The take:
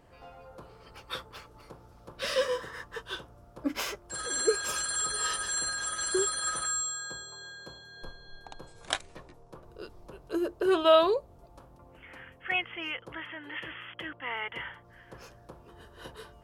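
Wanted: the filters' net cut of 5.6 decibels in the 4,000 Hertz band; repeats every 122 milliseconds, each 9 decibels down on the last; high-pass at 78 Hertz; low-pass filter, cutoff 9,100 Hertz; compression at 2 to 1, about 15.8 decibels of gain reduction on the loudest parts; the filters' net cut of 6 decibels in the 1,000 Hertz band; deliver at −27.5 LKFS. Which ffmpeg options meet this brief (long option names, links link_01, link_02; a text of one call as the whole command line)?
ffmpeg -i in.wav -af "highpass=78,lowpass=9100,equalizer=frequency=1000:width_type=o:gain=-8,equalizer=frequency=4000:width_type=o:gain=-6.5,acompressor=threshold=-50dB:ratio=2,aecho=1:1:122|244|366|488:0.355|0.124|0.0435|0.0152,volume=18dB" out.wav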